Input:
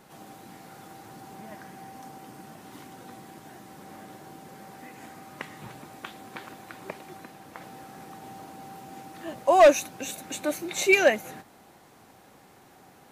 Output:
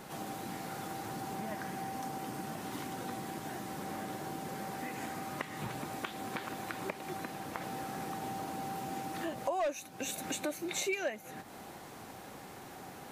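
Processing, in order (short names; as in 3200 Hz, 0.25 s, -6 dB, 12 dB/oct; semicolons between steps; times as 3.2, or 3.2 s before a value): compressor 5:1, threshold -41 dBFS, peak gain reduction 24.5 dB; gain +6 dB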